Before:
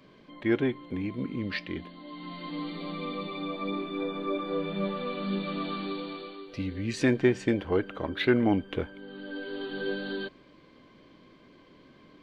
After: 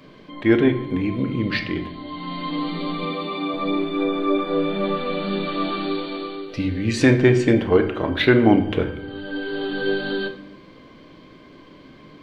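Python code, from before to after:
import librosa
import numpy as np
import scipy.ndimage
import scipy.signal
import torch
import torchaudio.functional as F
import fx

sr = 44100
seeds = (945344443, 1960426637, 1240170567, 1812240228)

y = fx.highpass(x, sr, hz=210.0, slope=12, at=(3.02, 3.54))
y = fx.room_shoebox(y, sr, seeds[0], volume_m3=200.0, walls='mixed', distance_m=0.45)
y = F.gain(torch.from_numpy(y), 8.5).numpy()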